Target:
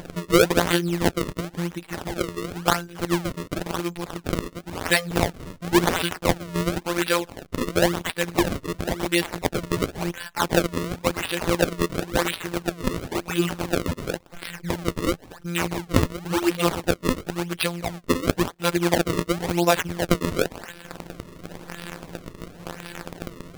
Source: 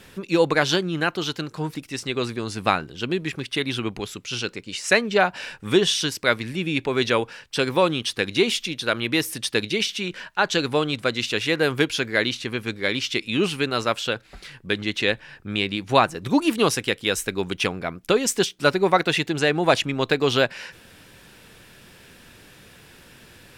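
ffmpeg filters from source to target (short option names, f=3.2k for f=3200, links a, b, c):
-af "acompressor=mode=upward:threshold=-24dB:ratio=2.5,afftfilt=real='hypot(re,im)*cos(PI*b)':imag='0':win_size=1024:overlap=0.75,acrusher=samples=32:mix=1:aa=0.000001:lfo=1:lforange=51.2:lforate=0.95,volume=2.5dB"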